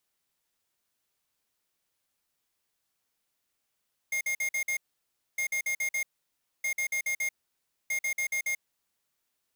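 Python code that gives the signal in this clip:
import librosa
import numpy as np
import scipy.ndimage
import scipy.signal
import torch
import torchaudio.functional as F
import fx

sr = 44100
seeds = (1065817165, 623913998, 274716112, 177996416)

y = fx.beep_pattern(sr, wave='square', hz=2130.0, on_s=0.09, off_s=0.05, beeps=5, pause_s=0.61, groups=4, level_db=-29.5)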